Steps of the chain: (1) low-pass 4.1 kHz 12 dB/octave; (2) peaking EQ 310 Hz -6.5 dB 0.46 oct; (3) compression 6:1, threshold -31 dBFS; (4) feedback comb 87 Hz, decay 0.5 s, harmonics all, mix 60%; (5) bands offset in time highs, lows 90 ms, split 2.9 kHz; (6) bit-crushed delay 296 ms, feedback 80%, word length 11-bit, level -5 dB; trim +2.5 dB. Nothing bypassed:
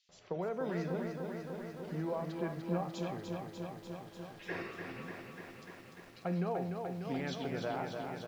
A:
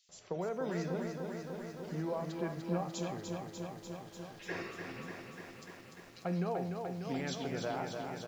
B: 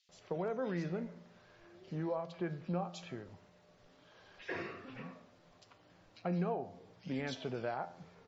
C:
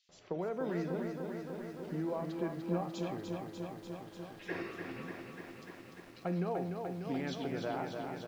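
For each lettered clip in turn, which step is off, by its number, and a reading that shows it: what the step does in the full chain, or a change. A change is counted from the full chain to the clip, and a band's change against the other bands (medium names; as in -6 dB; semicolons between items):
1, 8 kHz band +8.0 dB; 6, momentary loudness spread change +6 LU; 2, 250 Hz band +2.0 dB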